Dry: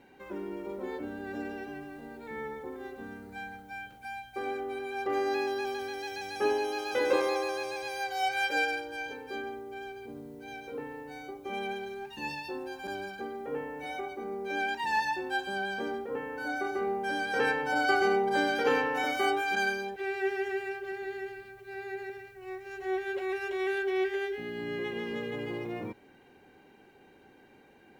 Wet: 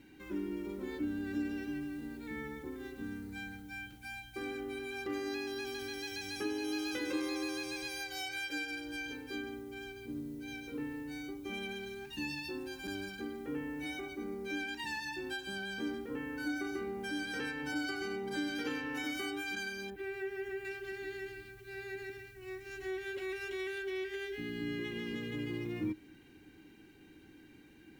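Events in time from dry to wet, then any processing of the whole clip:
19.9–20.65 bell 5100 Hz -12.5 dB 2.2 oct
whole clip: passive tone stack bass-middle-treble 6-0-2; compressor, threshold -55 dBFS; bell 310 Hz +14 dB 0.22 oct; gain +18 dB

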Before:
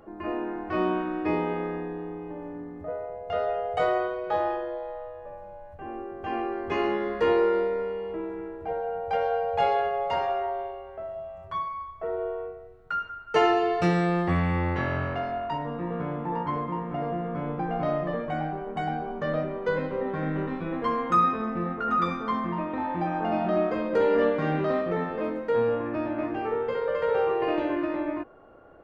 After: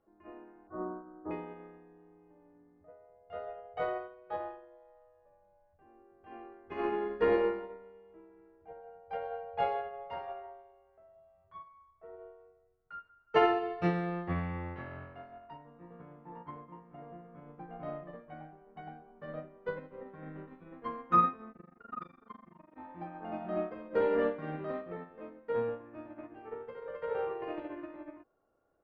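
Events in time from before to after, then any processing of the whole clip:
0.67–1.31 elliptic low-pass 1400 Hz, stop band 50 dB
6.63–7.55 reverb throw, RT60 0.96 s, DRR 3.5 dB
21.52–22.77 AM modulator 24 Hz, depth 95%
whole clip: LPF 3000 Hz 12 dB/oct; upward expander 2.5:1, over -33 dBFS; gain -2 dB

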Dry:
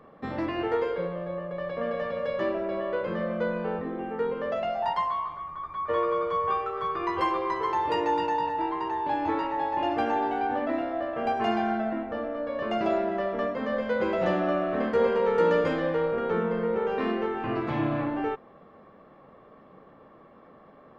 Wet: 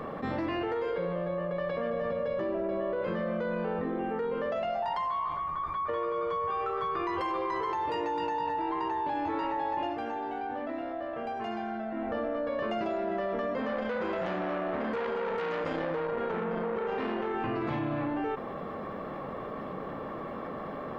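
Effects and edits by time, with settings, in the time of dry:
1.9–3.02 tilt shelf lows +4.5 dB
9.77–12.12 dip -15.5 dB, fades 0.19 s
13.6–17.34 core saturation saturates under 1500 Hz
whole clip: limiter -22.5 dBFS; fast leveller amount 70%; gain -3 dB

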